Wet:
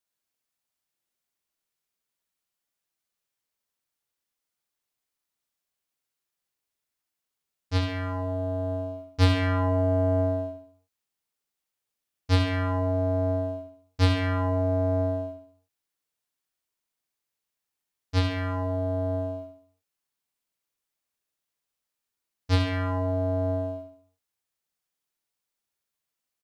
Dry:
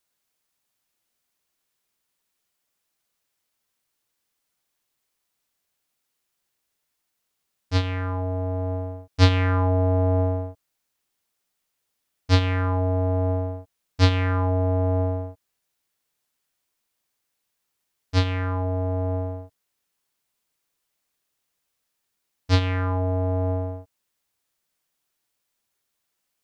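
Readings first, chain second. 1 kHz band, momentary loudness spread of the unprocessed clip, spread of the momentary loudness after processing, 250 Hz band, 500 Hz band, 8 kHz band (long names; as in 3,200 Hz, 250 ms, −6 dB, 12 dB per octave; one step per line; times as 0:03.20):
−3.5 dB, 12 LU, 11 LU, −1.0 dB, 0.0 dB, can't be measured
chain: leveller curve on the samples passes 1
on a send: repeating echo 68 ms, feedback 45%, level −6 dB
on the sum: level −7 dB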